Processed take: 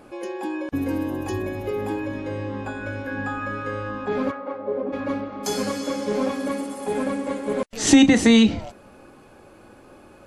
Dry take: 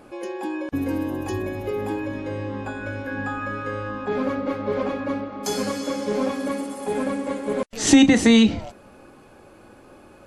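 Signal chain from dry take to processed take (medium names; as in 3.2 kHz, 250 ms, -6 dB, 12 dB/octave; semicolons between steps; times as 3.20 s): 4.30–4.92 s: band-pass filter 1.3 kHz -> 310 Hz, Q 1.2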